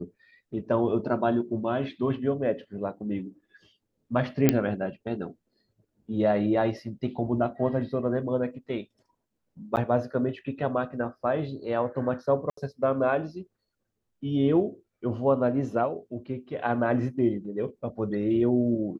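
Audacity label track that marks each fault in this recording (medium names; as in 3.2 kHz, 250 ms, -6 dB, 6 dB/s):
4.490000	4.490000	pop -5 dBFS
9.760000	9.770000	dropout 9.3 ms
12.500000	12.570000	dropout 74 ms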